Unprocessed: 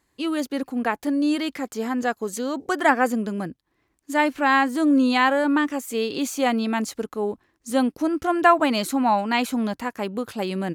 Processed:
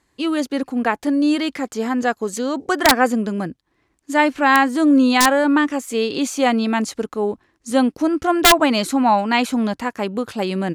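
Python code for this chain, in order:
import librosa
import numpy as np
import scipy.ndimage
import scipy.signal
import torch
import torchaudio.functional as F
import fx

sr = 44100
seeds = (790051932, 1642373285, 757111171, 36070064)

y = scipy.signal.sosfilt(scipy.signal.butter(2, 9900.0, 'lowpass', fs=sr, output='sos'), x)
y = (np.mod(10.0 ** (7.5 / 20.0) * y + 1.0, 2.0) - 1.0) / 10.0 ** (7.5 / 20.0)
y = F.gain(torch.from_numpy(y), 4.5).numpy()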